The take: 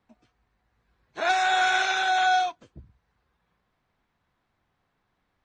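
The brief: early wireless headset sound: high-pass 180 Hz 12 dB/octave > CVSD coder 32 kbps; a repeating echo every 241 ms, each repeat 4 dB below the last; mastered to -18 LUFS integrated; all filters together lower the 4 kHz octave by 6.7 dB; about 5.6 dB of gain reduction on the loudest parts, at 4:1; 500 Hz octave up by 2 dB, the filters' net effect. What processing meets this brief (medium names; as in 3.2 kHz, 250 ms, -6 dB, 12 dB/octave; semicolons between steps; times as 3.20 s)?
peaking EQ 500 Hz +4 dB; peaking EQ 4 kHz -8 dB; compression 4:1, threshold -25 dBFS; high-pass 180 Hz 12 dB/octave; feedback delay 241 ms, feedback 63%, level -4 dB; CVSD coder 32 kbps; trim +9 dB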